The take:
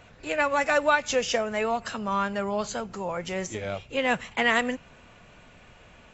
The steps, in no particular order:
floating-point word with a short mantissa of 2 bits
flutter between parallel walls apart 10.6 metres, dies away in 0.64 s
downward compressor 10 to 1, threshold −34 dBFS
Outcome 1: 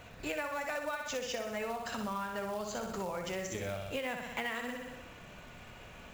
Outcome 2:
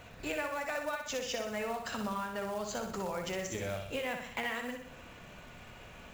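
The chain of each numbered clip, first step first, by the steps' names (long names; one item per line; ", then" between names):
flutter between parallel walls, then downward compressor, then floating-point word with a short mantissa
downward compressor, then flutter between parallel walls, then floating-point word with a short mantissa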